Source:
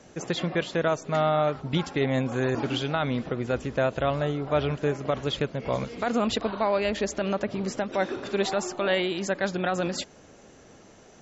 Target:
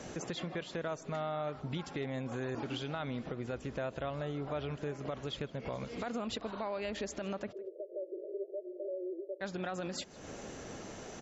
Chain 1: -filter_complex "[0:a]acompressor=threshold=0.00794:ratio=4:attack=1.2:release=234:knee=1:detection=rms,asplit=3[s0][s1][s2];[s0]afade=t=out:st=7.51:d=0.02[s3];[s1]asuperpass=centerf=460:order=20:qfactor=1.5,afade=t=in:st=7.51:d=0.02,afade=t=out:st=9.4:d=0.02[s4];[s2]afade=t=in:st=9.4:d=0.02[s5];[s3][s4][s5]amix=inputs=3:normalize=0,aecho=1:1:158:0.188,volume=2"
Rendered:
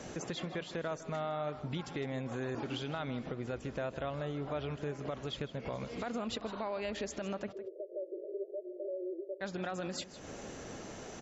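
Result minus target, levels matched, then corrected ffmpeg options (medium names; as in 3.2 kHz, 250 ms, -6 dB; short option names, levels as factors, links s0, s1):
echo-to-direct +8.5 dB
-filter_complex "[0:a]acompressor=threshold=0.00794:ratio=4:attack=1.2:release=234:knee=1:detection=rms,asplit=3[s0][s1][s2];[s0]afade=t=out:st=7.51:d=0.02[s3];[s1]asuperpass=centerf=460:order=20:qfactor=1.5,afade=t=in:st=7.51:d=0.02,afade=t=out:st=9.4:d=0.02[s4];[s2]afade=t=in:st=9.4:d=0.02[s5];[s3][s4][s5]amix=inputs=3:normalize=0,aecho=1:1:158:0.0708,volume=2"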